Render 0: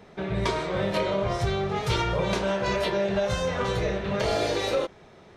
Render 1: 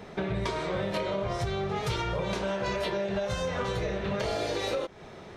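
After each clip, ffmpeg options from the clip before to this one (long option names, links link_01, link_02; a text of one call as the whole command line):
ffmpeg -i in.wav -af "acompressor=threshold=-34dB:ratio=5,volume=5.5dB" out.wav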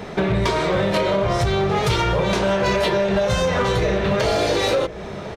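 ffmpeg -i in.wav -filter_complex "[0:a]asplit=2[link_01][link_02];[link_02]aeval=exprs='0.0398*(abs(mod(val(0)/0.0398+3,4)-2)-1)':channel_layout=same,volume=-8dB[link_03];[link_01][link_03]amix=inputs=2:normalize=0,asplit=2[link_04][link_05];[link_05]adelay=1050,volume=-15dB,highshelf=frequency=4000:gain=-23.6[link_06];[link_04][link_06]amix=inputs=2:normalize=0,volume=9dB" out.wav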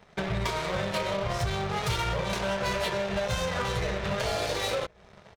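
ffmpeg -i in.wav -af "aeval=exprs='0.316*(cos(1*acos(clip(val(0)/0.316,-1,1)))-cos(1*PI/2))+0.0398*(cos(7*acos(clip(val(0)/0.316,-1,1)))-cos(7*PI/2))':channel_layout=same,equalizer=frequency=310:width_type=o:width=1.2:gain=-8.5,volume=-8dB" out.wav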